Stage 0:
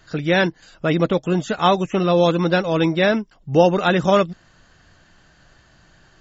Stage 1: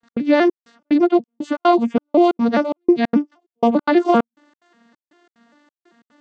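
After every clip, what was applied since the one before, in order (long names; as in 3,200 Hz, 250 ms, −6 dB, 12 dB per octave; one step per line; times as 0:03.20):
vocoder with an arpeggio as carrier major triad, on A#3, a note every 197 ms
noise gate with hold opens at −54 dBFS
gate pattern "x.xxxx..x" 182 BPM −60 dB
level +3.5 dB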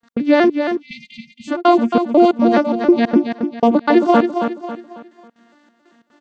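on a send: repeating echo 273 ms, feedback 38%, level −7 dB
on the sum: time-frequency box erased 0:00.82–0:01.48, 240–2,000 Hz
level +2 dB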